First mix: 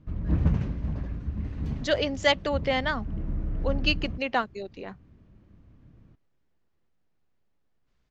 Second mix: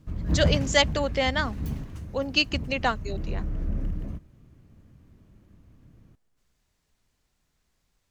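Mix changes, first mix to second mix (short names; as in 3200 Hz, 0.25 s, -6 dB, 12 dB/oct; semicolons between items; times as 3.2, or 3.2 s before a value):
speech: entry -1.50 s; master: remove air absorption 150 m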